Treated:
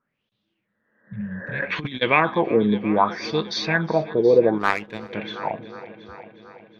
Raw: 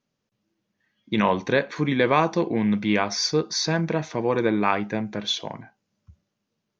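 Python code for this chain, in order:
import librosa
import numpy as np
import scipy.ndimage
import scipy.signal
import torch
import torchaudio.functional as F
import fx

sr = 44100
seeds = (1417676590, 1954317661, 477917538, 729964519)

p1 = fx.filter_lfo_lowpass(x, sr, shape='sine', hz=0.65, low_hz=420.0, high_hz=3700.0, q=5.9)
p2 = fx.spec_repair(p1, sr, seeds[0], start_s=0.73, length_s=0.86, low_hz=200.0, high_hz=2000.0, source='both')
p3 = p2 + fx.echo_heads(p2, sr, ms=363, heads='first and second', feedback_pct=53, wet_db=-20.0, dry=0)
p4 = fx.over_compress(p3, sr, threshold_db=-27.0, ratio=-0.5, at=(1.6, 2.01), fade=0.02)
p5 = fx.power_curve(p4, sr, exponent=1.4, at=(4.58, 5.13))
y = p5 * 10.0 ** (-1.5 / 20.0)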